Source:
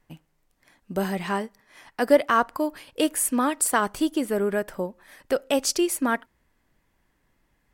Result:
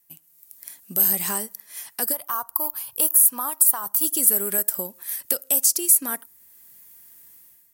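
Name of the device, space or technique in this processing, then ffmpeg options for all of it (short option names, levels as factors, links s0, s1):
FM broadcast chain: -filter_complex "[0:a]asplit=3[s0][s1][s2];[s0]afade=t=out:st=2.12:d=0.02[s3];[s1]equalizer=f=125:t=o:w=1:g=5,equalizer=f=250:t=o:w=1:g=-11,equalizer=f=500:t=o:w=1:g=-8,equalizer=f=1000:t=o:w=1:g=9,equalizer=f=2000:t=o:w=1:g=-10,equalizer=f=4000:t=o:w=1:g=-6,equalizer=f=8000:t=o:w=1:g=-10,afade=t=in:st=2.12:d=0.02,afade=t=out:st=4.03:d=0.02[s4];[s2]afade=t=in:st=4.03:d=0.02[s5];[s3][s4][s5]amix=inputs=3:normalize=0,highpass=80,dynaudnorm=f=110:g=7:m=5.01,acrossover=split=1600|5200[s6][s7][s8];[s6]acompressor=threshold=0.178:ratio=4[s9];[s7]acompressor=threshold=0.0158:ratio=4[s10];[s8]acompressor=threshold=0.0501:ratio=4[s11];[s9][s10][s11]amix=inputs=3:normalize=0,aemphasis=mode=production:type=75fm,alimiter=limit=0.473:level=0:latency=1:release=323,asoftclip=type=hard:threshold=0.398,lowpass=f=15000:w=0.5412,lowpass=f=15000:w=1.3066,aemphasis=mode=production:type=75fm,volume=0.266"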